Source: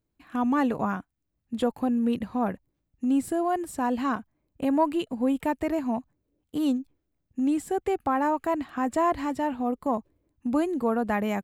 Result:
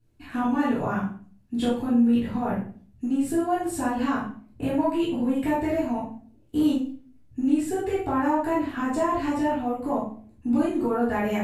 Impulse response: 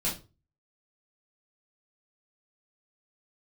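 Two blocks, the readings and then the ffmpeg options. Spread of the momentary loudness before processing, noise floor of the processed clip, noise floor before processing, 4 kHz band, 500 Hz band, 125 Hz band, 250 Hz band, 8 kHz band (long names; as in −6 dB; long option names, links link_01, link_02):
8 LU, −56 dBFS, −79 dBFS, +3.0 dB, +1.0 dB, +6.0 dB, +2.5 dB, +3.0 dB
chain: -filter_complex "[0:a]acompressor=threshold=-36dB:ratio=2.5[link_01];[1:a]atrim=start_sample=2205,asetrate=27783,aresample=44100[link_02];[link_01][link_02]afir=irnorm=-1:irlink=0"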